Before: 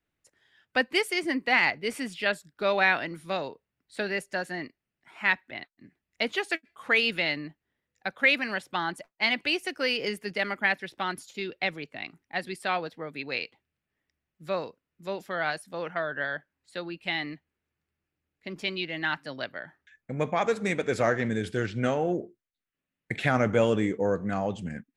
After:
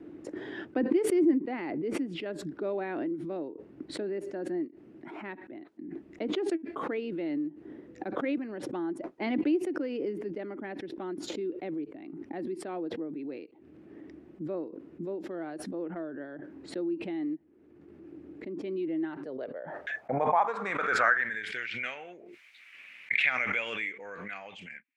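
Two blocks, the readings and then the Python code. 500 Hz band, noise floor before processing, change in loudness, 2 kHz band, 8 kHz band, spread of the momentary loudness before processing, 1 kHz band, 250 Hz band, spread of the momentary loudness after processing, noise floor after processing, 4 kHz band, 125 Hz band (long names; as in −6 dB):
−3.5 dB, below −85 dBFS, −4.0 dB, −6.0 dB, −4.0 dB, 15 LU, −3.0 dB, +1.5 dB, 19 LU, −56 dBFS, −12.5 dB, −11.0 dB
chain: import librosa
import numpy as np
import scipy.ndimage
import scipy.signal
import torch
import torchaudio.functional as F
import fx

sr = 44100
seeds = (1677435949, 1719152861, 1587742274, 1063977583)

y = fx.filter_sweep_bandpass(x, sr, from_hz=320.0, to_hz=2300.0, start_s=18.97, end_s=21.66, q=5.4)
y = fx.pre_swell(y, sr, db_per_s=26.0)
y = F.gain(torch.from_numpy(y), 8.5).numpy()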